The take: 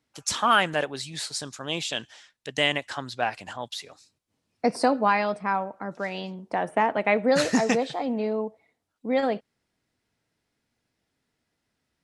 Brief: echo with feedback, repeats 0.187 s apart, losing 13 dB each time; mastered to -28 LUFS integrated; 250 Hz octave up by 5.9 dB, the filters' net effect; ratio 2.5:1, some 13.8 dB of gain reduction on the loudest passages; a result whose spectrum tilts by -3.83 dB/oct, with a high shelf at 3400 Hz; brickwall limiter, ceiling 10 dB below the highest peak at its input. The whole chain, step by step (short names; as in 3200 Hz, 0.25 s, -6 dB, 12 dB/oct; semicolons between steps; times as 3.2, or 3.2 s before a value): bell 250 Hz +6.5 dB; high shelf 3400 Hz +3.5 dB; compressor 2.5:1, threshold -33 dBFS; limiter -26.5 dBFS; feedback echo 0.187 s, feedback 22%, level -13 dB; gain +9 dB